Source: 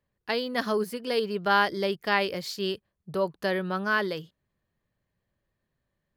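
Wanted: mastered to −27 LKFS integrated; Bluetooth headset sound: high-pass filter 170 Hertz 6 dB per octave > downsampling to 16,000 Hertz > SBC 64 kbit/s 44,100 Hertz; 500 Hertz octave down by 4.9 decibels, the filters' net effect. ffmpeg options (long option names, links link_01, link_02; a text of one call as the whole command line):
ffmpeg -i in.wav -af "highpass=frequency=170:poles=1,equalizer=frequency=500:width_type=o:gain=-5.5,aresample=16000,aresample=44100,volume=2.5dB" -ar 44100 -c:a sbc -b:a 64k out.sbc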